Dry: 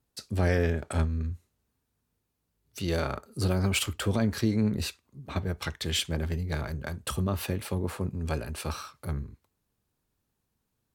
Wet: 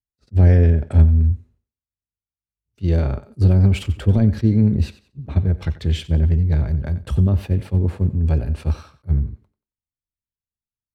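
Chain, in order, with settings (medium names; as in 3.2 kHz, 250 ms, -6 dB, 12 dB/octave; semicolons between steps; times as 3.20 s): RIAA curve playback; expander -43 dBFS; dynamic bell 1.2 kHz, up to -7 dB, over -50 dBFS, Q 2.3; thinning echo 91 ms, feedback 31%, high-pass 240 Hz, level -15 dB; attacks held to a fixed rise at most 590 dB/s; trim +1.5 dB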